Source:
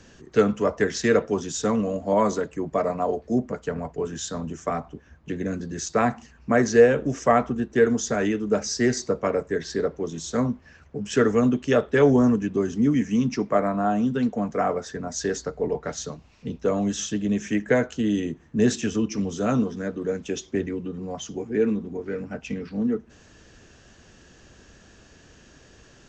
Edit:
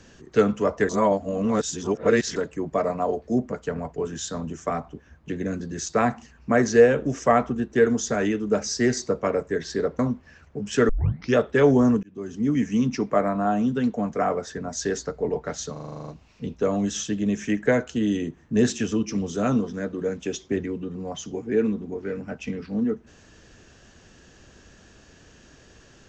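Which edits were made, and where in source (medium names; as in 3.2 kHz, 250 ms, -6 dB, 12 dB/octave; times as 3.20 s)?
0.89–2.36 s: reverse
9.99–10.38 s: delete
11.28 s: tape start 0.45 s
12.42–13.02 s: fade in
16.11 s: stutter 0.04 s, 10 plays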